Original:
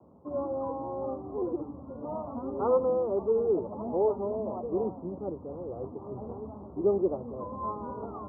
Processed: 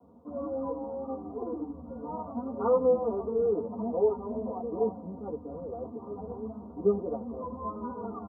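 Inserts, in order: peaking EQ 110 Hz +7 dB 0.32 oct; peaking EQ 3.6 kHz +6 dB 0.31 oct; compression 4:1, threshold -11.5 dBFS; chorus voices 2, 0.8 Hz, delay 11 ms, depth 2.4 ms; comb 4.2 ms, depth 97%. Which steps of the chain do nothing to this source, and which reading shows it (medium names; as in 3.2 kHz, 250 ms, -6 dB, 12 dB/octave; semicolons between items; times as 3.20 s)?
peaking EQ 3.6 kHz: input has nothing above 1.3 kHz; compression, threshold -11.5 dBFS: peak at its input -14.5 dBFS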